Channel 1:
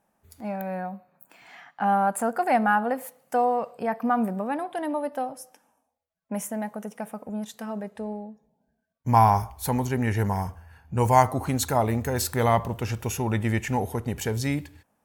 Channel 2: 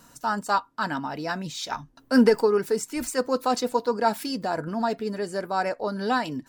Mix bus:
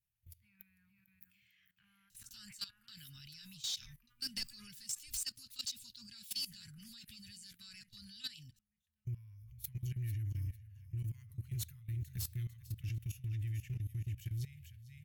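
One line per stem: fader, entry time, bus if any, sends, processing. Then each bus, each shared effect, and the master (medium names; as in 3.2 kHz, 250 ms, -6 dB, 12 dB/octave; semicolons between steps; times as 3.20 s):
-0.5 dB, 0.00 s, no send, echo send -10.5 dB, graphic EQ 125/250/1000/2000/4000/8000 Hz +6/-11/+8/+5/-9/-10 dB; compression 6:1, threshold -24 dBFS, peak gain reduction 17.5 dB; peak limiter -21.5 dBFS, peak gain reduction 8.5 dB
+2.5 dB, 2.10 s, no send, no echo send, none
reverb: none
echo: feedback delay 449 ms, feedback 35%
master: Chebyshev band-stop 110–3100 Hz, order 3; level held to a coarse grid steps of 18 dB; saturation -30.5 dBFS, distortion -20 dB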